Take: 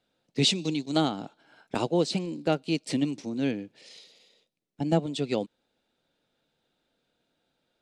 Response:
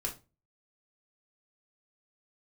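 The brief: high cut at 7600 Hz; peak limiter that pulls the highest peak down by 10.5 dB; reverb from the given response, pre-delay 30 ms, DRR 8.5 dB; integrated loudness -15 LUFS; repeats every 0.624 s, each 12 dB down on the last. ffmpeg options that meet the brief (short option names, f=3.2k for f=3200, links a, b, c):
-filter_complex "[0:a]lowpass=7.6k,alimiter=limit=-21.5dB:level=0:latency=1,aecho=1:1:624|1248|1872:0.251|0.0628|0.0157,asplit=2[a][b];[1:a]atrim=start_sample=2205,adelay=30[c];[b][c]afir=irnorm=-1:irlink=0,volume=-10.5dB[d];[a][d]amix=inputs=2:normalize=0,volume=18dB"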